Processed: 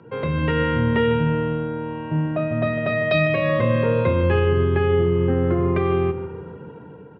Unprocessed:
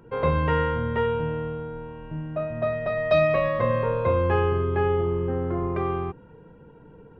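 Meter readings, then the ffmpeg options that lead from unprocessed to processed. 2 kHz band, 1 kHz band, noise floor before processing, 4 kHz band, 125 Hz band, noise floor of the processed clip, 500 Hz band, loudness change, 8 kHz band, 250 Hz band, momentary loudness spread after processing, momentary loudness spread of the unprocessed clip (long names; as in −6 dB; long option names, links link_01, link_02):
+6.0 dB, 0.0 dB, −50 dBFS, +7.5 dB, +6.0 dB, −41 dBFS, +3.0 dB, +4.0 dB, can't be measured, +8.5 dB, 10 LU, 11 LU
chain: -filter_complex "[0:a]acrossover=split=450|1600[link_01][link_02][link_03];[link_01]highpass=frequency=94:width=0.5412,highpass=frequency=94:width=1.3066[link_04];[link_02]acompressor=threshold=-43dB:ratio=6[link_05];[link_04][link_05][link_03]amix=inputs=3:normalize=0,alimiter=limit=-21dB:level=0:latency=1:release=163,lowpass=frequency=4400:width=0.5412,lowpass=frequency=4400:width=1.3066,dynaudnorm=framelen=120:gausssize=7:maxgain=6dB,asplit=2[link_06][link_07];[link_07]adelay=151,lowpass=frequency=1900:poles=1,volume=-10dB,asplit=2[link_08][link_09];[link_09]adelay=151,lowpass=frequency=1900:poles=1,volume=0.49,asplit=2[link_10][link_11];[link_11]adelay=151,lowpass=frequency=1900:poles=1,volume=0.49,asplit=2[link_12][link_13];[link_13]adelay=151,lowpass=frequency=1900:poles=1,volume=0.49,asplit=2[link_14][link_15];[link_15]adelay=151,lowpass=frequency=1900:poles=1,volume=0.49[link_16];[link_06][link_08][link_10][link_12][link_14][link_16]amix=inputs=6:normalize=0,volume=5dB"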